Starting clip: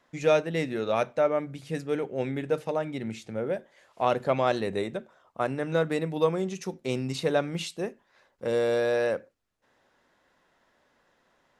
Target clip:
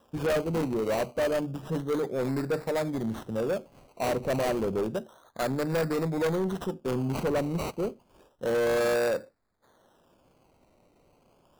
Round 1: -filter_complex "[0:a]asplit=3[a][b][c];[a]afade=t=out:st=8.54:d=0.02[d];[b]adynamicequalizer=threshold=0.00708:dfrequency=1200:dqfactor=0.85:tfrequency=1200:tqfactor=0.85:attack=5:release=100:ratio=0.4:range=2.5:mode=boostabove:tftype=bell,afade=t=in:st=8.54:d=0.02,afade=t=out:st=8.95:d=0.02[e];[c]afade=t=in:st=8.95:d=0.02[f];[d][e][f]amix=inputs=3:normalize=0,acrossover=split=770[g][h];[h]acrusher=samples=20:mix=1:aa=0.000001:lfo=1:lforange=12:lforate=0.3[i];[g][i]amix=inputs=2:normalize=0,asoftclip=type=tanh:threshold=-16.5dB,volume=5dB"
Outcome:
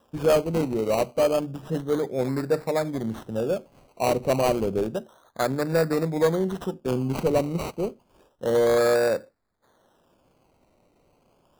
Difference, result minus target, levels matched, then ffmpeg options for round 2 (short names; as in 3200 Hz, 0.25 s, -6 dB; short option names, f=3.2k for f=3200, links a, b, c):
soft clip: distortion -11 dB
-filter_complex "[0:a]asplit=3[a][b][c];[a]afade=t=out:st=8.54:d=0.02[d];[b]adynamicequalizer=threshold=0.00708:dfrequency=1200:dqfactor=0.85:tfrequency=1200:tqfactor=0.85:attack=5:release=100:ratio=0.4:range=2.5:mode=boostabove:tftype=bell,afade=t=in:st=8.54:d=0.02,afade=t=out:st=8.95:d=0.02[e];[c]afade=t=in:st=8.95:d=0.02[f];[d][e][f]amix=inputs=3:normalize=0,acrossover=split=770[g][h];[h]acrusher=samples=20:mix=1:aa=0.000001:lfo=1:lforange=12:lforate=0.3[i];[g][i]amix=inputs=2:normalize=0,asoftclip=type=tanh:threshold=-28dB,volume=5dB"